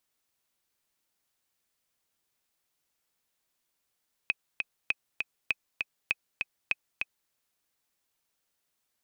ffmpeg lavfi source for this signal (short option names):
-f lavfi -i "aevalsrc='pow(10,(-12.5-4*gte(mod(t,2*60/199),60/199))/20)*sin(2*PI*2530*mod(t,60/199))*exp(-6.91*mod(t,60/199)/0.03)':d=3.01:s=44100"